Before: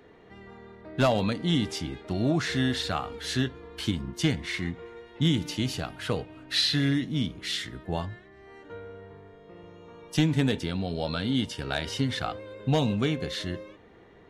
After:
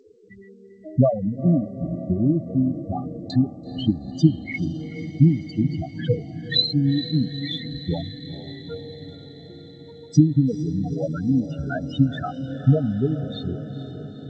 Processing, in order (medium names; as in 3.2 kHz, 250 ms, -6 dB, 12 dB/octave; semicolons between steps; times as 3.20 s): transient shaper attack +9 dB, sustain -10 dB; loudest bins only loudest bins 4; 1.19–3.30 s: brick-wall FIR low-pass 1.2 kHz; echo that smears into a reverb 454 ms, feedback 68%, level -11.5 dB; trim +5 dB; G.722 64 kbps 16 kHz